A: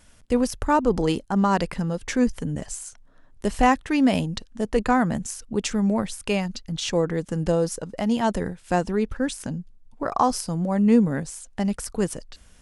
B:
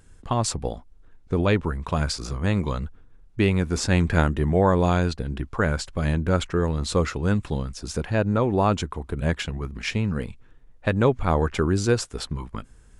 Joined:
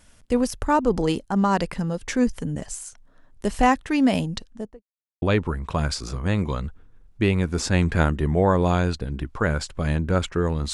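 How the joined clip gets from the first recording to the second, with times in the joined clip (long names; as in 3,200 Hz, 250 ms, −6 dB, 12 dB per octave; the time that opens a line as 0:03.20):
A
0:04.41–0:04.83: fade out and dull
0:04.83–0:05.22: silence
0:05.22: continue with B from 0:01.40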